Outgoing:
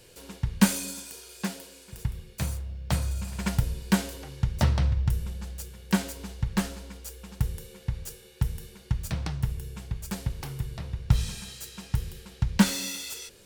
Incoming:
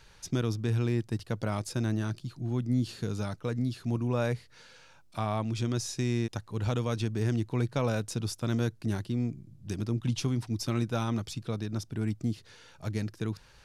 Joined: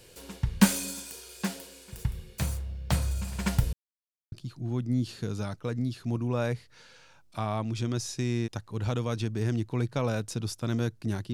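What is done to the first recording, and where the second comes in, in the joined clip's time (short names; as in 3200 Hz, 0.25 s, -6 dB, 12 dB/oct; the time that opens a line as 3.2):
outgoing
3.73–4.32 mute
4.32 switch to incoming from 2.12 s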